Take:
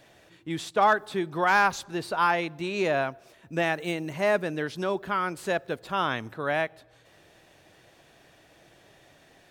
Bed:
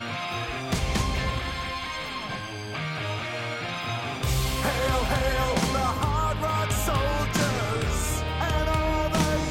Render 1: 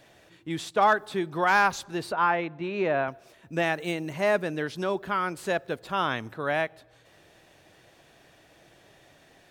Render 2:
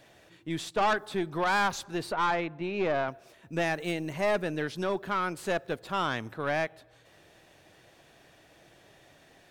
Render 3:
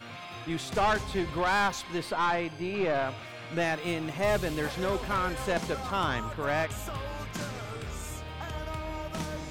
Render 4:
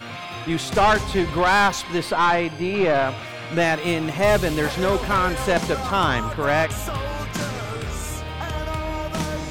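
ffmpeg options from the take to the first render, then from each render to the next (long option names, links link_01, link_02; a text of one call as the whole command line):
ffmpeg -i in.wav -filter_complex "[0:a]asettb=1/sr,asplit=3[link_01][link_02][link_03];[link_01]atrim=end=2.124[link_04];[link_02]atrim=start=2.12:end=3.08,asetpts=PTS-STARTPTS,afade=type=in:duration=0.004:curve=qsin,afade=type=out:start_time=0.956:duration=0.004:curve=qsin,highpass=100,lowpass=2400[link_05];[link_03]atrim=start=3.076[link_06];[link_04][link_05]acrossfade=duration=0.004:curve1=hsin:curve2=qsin[link_07];[link_07][link_06]acrossfade=duration=0.004:curve1=qsin:curve2=hsin" out.wav
ffmpeg -i in.wav -af "aeval=exprs='(tanh(11.2*val(0)+0.35)-tanh(0.35))/11.2':channel_layout=same" out.wav
ffmpeg -i in.wav -i bed.wav -filter_complex "[1:a]volume=-11.5dB[link_01];[0:a][link_01]amix=inputs=2:normalize=0" out.wav
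ffmpeg -i in.wav -af "volume=9dB" out.wav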